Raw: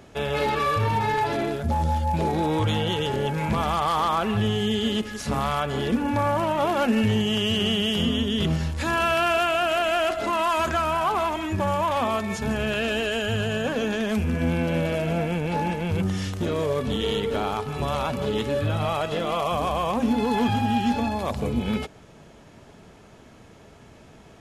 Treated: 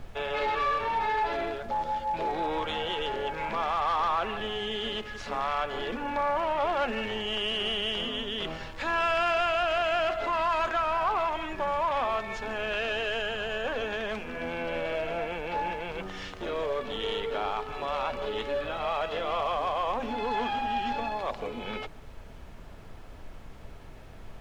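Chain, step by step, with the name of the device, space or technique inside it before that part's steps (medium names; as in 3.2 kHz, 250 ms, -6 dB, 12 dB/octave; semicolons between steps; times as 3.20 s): aircraft cabin announcement (band-pass 500–3600 Hz; saturation -17.5 dBFS, distortion -21 dB; brown noise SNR 13 dB); trim -1.5 dB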